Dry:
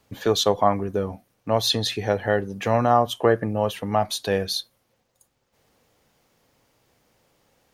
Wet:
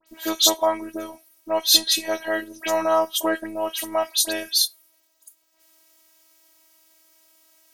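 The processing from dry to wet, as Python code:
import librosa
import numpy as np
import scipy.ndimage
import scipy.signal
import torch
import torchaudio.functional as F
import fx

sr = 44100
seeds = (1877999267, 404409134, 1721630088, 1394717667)

y = fx.robotise(x, sr, hz=323.0)
y = fx.riaa(y, sr, side='recording')
y = fx.dispersion(y, sr, late='highs', ms=72.0, hz=2700.0)
y = F.gain(torch.from_numpy(y), 2.0).numpy()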